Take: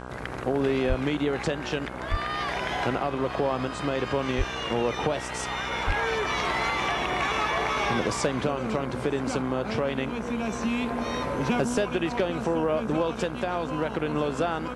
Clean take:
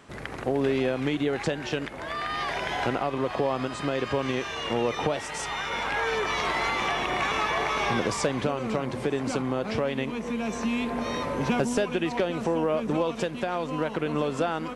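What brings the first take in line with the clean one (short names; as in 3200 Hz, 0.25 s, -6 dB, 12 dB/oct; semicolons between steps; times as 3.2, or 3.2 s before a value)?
de-hum 62.7 Hz, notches 26; de-plosive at 0.88/2.1/4.37/5.86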